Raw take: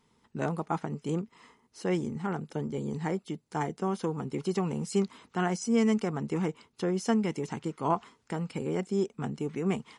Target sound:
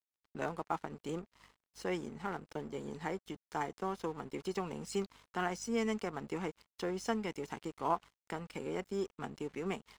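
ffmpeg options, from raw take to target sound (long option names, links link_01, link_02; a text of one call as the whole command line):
ffmpeg -i in.wav -filter_complex "[0:a]highpass=frequency=520:poles=1,highshelf=frequency=9100:gain=-10,asplit=2[link_01][link_02];[link_02]acompressor=threshold=-45dB:ratio=6,volume=0dB[link_03];[link_01][link_03]amix=inputs=2:normalize=0,aeval=exprs='val(0)+0.00141*(sin(2*PI*50*n/s)+sin(2*PI*2*50*n/s)/2+sin(2*PI*3*50*n/s)/3+sin(2*PI*4*50*n/s)/4+sin(2*PI*5*50*n/s)/5)':channel_layout=same,aeval=exprs='sgn(val(0))*max(abs(val(0))-0.00299,0)':channel_layout=same,volume=-3.5dB" out.wav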